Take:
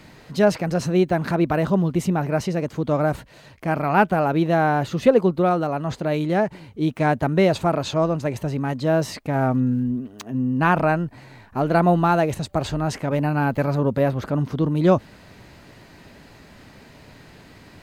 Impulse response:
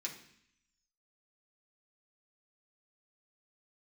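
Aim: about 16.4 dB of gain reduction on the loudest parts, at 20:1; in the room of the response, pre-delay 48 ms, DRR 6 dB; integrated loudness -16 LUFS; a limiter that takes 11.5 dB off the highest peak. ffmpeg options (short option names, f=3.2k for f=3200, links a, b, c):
-filter_complex "[0:a]acompressor=threshold=-26dB:ratio=20,alimiter=level_in=2.5dB:limit=-24dB:level=0:latency=1,volume=-2.5dB,asplit=2[a][b];[1:a]atrim=start_sample=2205,adelay=48[c];[b][c]afir=irnorm=-1:irlink=0,volume=-5.5dB[d];[a][d]amix=inputs=2:normalize=0,volume=18dB"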